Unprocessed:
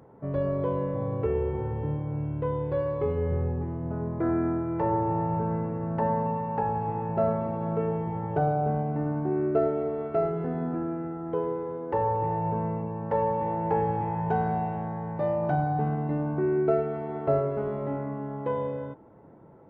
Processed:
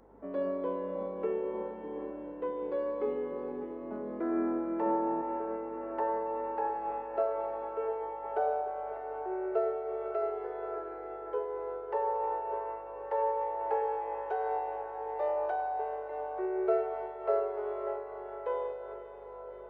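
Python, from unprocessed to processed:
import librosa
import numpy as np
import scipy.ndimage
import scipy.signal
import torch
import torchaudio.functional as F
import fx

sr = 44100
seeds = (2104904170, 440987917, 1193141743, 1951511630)

y = fx.steep_highpass(x, sr, hz=fx.steps((0.0, 190.0), (5.21, 370.0)), slope=96)
y = fx.add_hum(y, sr, base_hz=50, snr_db=32)
y = fx.echo_diffused(y, sr, ms=619, feedback_pct=62, wet_db=-10.0)
y = fx.am_noise(y, sr, seeds[0], hz=5.7, depth_pct=50)
y = y * librosa.db_to_amplitude(-2.0)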